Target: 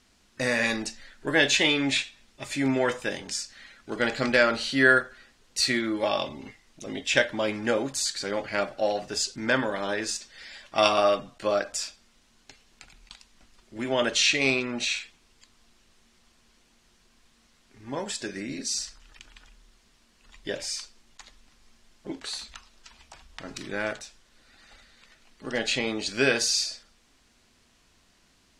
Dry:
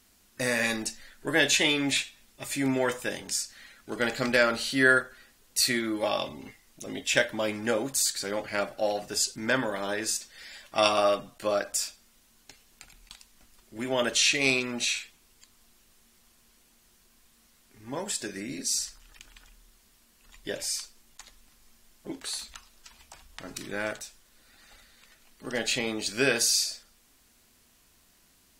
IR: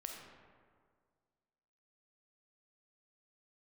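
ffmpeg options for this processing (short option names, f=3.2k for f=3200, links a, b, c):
-filter_complex "[0:a]lowpass=6.1k,asplit=3[a][b][c];[a]afade=t=out:st=14.43:d=0.02[d];[b]adynamicequalizer=threshold=0.0126:dfrequency=2700:dqfactor=0.7:tfrequency=2700:tqfactor=0.7:attack=5:release=100:ratio=0.375:range=3.5:mode=cutabove:tftype=highshelf,afade=t=in:st=14.43:d=0.02,afade=t=out:st=14.9:d=0.02[e];[c]afade=t=in:st=14.9:d=0.02[f];[d][e][f]amix=inputs=3:normalize=0,volume=2dB"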